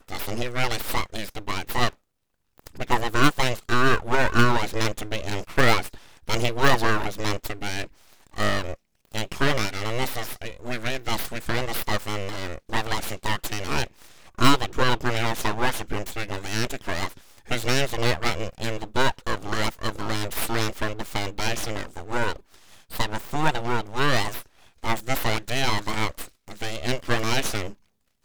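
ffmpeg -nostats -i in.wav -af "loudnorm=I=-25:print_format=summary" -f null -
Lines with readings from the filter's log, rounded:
Input Integrated:    -26.5 LUFS
Input True Peak:      -1.9 dBTP
Input LRA:             5.4 LU
Input Threshold:     -36.9 LUFS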